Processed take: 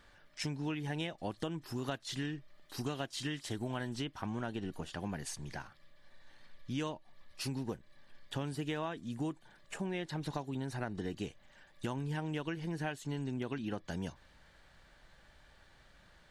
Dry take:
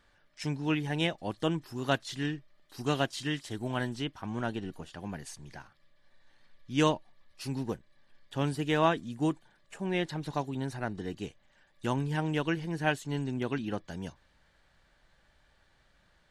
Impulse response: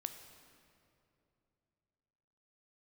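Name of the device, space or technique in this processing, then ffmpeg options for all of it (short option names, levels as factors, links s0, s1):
serial compression, peaks first: -af "acompressor=threshold=0.0178:ratio=6,acompressor=threshold=0.00562:ratio=1.5,volume=1.68"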